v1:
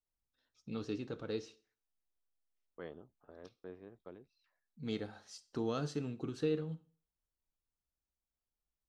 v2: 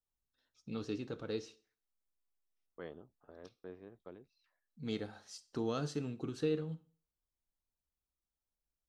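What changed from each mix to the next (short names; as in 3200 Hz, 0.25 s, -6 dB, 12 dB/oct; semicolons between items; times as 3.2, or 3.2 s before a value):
master: add high shelf 7900 Hz +5 dB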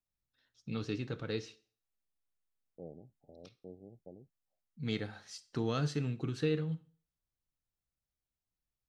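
second voice: add rippled Chebyshev low-pass 820 Hz, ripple 3 dB; master: add graphic EQ 125/2000/4000 Hz +9/+8/+3 dB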